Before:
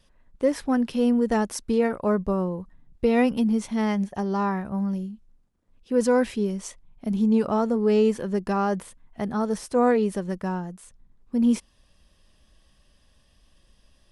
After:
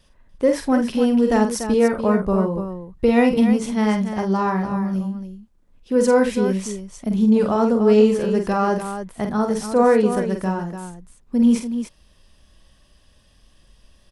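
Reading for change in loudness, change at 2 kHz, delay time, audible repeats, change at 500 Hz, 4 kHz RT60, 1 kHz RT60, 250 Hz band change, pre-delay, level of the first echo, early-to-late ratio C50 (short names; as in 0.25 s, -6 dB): +5.0 dB, +5.5 dB, 47 ms, 3, +5.5 dB, none, none, +5.0 dB, none, -6.0 dB, none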